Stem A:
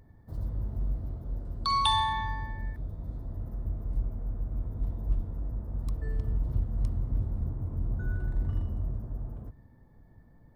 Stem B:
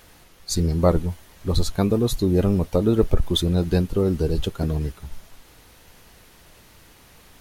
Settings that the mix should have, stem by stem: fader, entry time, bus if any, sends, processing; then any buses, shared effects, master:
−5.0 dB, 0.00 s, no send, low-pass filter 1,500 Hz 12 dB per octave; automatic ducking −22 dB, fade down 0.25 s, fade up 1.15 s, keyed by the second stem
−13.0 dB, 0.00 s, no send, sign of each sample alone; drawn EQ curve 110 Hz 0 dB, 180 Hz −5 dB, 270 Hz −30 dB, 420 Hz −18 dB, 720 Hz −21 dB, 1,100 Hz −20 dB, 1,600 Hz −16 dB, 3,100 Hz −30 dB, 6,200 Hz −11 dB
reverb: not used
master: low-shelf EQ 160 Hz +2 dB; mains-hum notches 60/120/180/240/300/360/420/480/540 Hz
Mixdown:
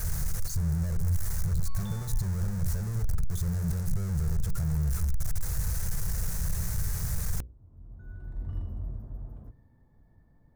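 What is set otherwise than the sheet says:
stem A: missing low-pass filter 1,500 Hz 12 dB per octave
stem B −13.0 dB → −1.5 dB

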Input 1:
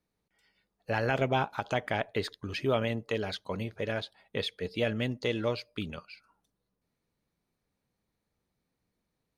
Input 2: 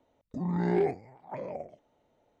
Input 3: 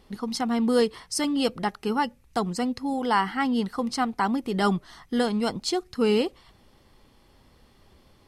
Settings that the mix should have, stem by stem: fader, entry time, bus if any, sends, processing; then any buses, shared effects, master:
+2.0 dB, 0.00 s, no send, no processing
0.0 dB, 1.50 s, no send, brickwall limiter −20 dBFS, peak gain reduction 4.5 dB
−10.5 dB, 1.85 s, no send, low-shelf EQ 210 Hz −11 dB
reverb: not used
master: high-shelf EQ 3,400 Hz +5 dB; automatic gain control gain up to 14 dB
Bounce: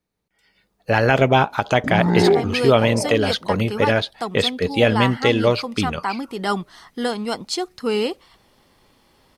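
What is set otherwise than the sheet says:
stem 2: missing brickwall limiter −20 dBFS, peak gain reduction 4.5 dB
master: missing high-shelf EQ 3,400 Hz +5 dB

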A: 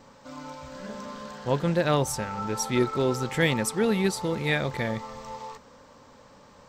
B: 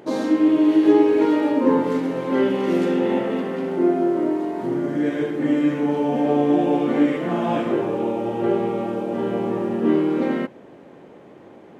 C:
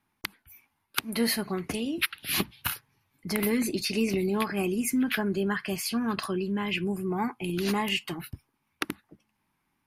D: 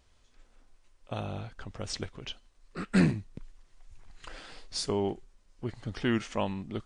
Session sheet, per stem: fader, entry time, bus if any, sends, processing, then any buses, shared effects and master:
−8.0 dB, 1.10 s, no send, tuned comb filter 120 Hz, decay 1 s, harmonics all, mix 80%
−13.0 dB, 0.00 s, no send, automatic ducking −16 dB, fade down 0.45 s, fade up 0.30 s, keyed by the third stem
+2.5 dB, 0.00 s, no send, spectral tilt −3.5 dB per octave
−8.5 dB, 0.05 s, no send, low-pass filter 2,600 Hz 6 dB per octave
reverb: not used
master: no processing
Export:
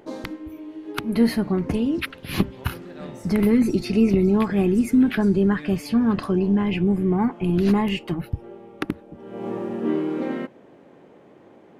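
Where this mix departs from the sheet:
stem B −13.0 dB → −5.0 dB
stem D −8.5 dB → −16.5 dB

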